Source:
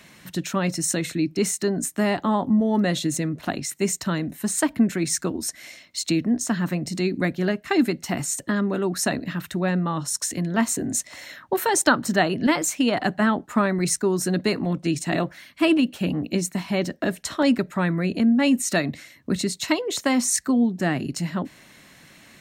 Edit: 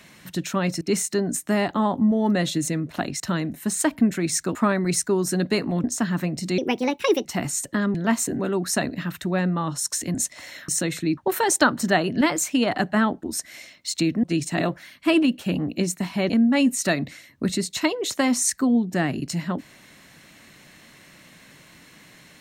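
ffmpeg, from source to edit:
-filter_complex "[0:a]asplit=15[a][b][c][d][e][f][g][h][i][j][k][l][m][n][o];[a]atrim=end=0.812[p];[b]atrim=start=1.298:end=3.692[q];[c]atrim=start=3.978:end=5.332[r];[d]atrim=start=13.488:end=14.782[s];[e]atrim=start=6.328:end=7.074[t];[f]atrim=start=7.07:end=8,asetpts=PTS-STARTPTS,asetrate=60858,aresample=44100[u];[g]atrim=start=7.996:end=8.692[v];[h]atrim=start=10.438:end=10.892[w];[i]atrim=start=8.688:end=10.442[x];[j]atrim=start=10.888:end=11.432[y];[k]atrim=start=0.808:end=1.302[z];[l]atrim=start=11.428:end=13.492[aa];[m]atrim=start=5.328:end=6.332[ab];[n]atrim=start=14.778:end=16.842[ac];[o]atrim=start=18.158[ad];[p][q]acrossfade=d=0.004:c1=hsin:c2=hsin[ae];[ae][r]acrossfade=d=0.004:c1=hsin:c2=hsin[af];[af][s]acrossfade=d=0.004:c1=hsin:c2=hsin[ag];[ag][t]acrossfade=d=0.004:c1=hsin:c2=hsin[ah];[ah][u]acrossfade=d=0.004:c1=hsin:c2=hsin[ai];[ai][v]acrossfade=d=0.004:c1=hsin:c2=hsin[aj];[aj][w]acrossfade=d=0.004:c1=hsin:c2=hsin[ak];[ak][x]acrossfade=d=0.004:c1=hsin:c2=hsin[al];[al][y]acrossfade=d=0.004:c1=hsin:c2=hsin[am];[am][z]acrossfade=d=0.004:c1=hsin:c2=hsin[an];[an][aa]acrossfade=d=0.004:c1=hsin:c2=hsin[ao];[ao][ab]acrossfade=d=0.004:c1=hsin:c2=hsin[ap];[ap][ac]acrossfade=d=0.004:c1=hsin:c2=hsin[aq];[aq][ad]acrossfade=d=0.004:c1=hsin:c2=hsin"

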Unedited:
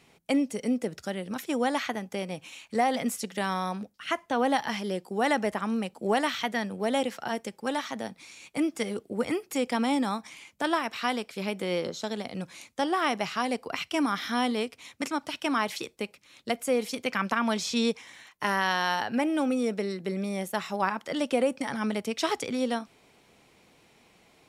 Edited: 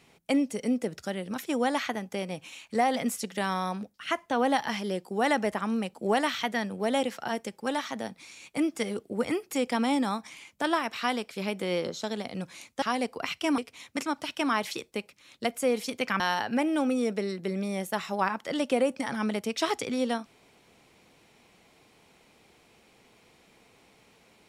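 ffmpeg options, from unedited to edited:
-filter_complex "[0:a]asplit=4[a][b][c][d];[a]atrim=end=12.822[e];[b]atrim=start=13.318:end=14.082[f];[c]atrim=start=14.628:end=17.252[g];[d]atrim=start=18.808[h];[e][f]acrossfade=d=0.004:c1=hsin:c2=hsin[i];[i][g]acrossfade=d=0.004:c1=hsin:c2=hsin[j];[j][h]acrossfade=d=0.004:c1=hsin:c2=hsin"

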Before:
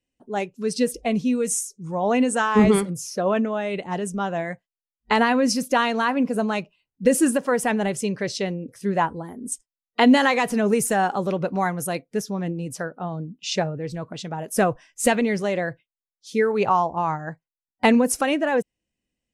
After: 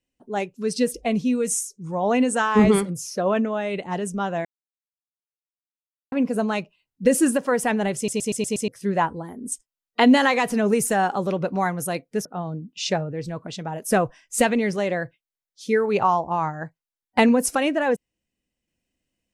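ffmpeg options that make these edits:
-filter_complex "[0:a]asplit=10[a][b][c][d][e][f][g][h][i][j];[a]atrim=end=4.45,asetpts=PTS-STARTPTS,afade=t=out:st=4.446:d=0.004:c=hsin[k];[b]atrim=start=4.45:end=6.12,asetpts=PTS-STARTPTS,volume=0[l];[c]atrim=start=6.12:end=8.082,asetpts=PTS-STARTPTS,afade=t=in:d=0.004:c=hsin[m];[d]atrim=start=7.958:end=8.082[n];[e]atrim=start=7.958:end=8.082[o];[f]atrim=start=7.958:end=8.082[p];[g]atrim=start=7.958:end=8.082[q];[h]atrim=start=7.958:end=8.082[r];[i]atrim=start=8.678:end=12.252[s];[j]atrim=start=12.908[t];[k][l][m]concat=n=3:v=0:a=1[u];[u][n]acrossfade=d=0.004:c1=hsin:c2=hsin[v];[v][o]acrossfade=d=0.004:c1=hsin:c2=hsin[w];[w][p]acrossfade=d=0.004:c1=hsin:c2=hsin[x];[x][q]acrossfade=d=0.004:c1=hsin:c2=hsin[y];[y][r]acrossfade=d=0.004:c1=hsin:c2=hsin[z];[z][s]acrossfade=d=0.004:c1=hsin:c2=hsin[aa];[aa][t]acrossfade=d=0.004:c1=hsin:c2=hsin"

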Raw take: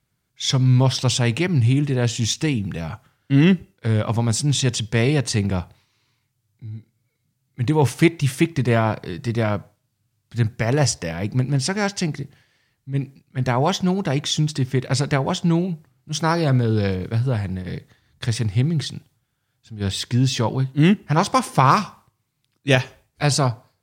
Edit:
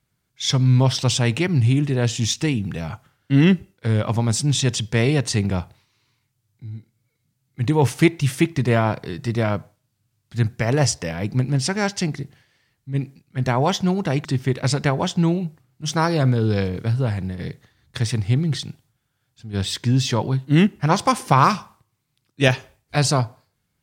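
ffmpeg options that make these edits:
-filter_complex "[0:a]asplit=2[a][b];[a]atrim=end=14.252[c];[b]atrim=start=14.518[d];[c][d]acrossfade=d=0.004:c1=hsin:c2=hsin"

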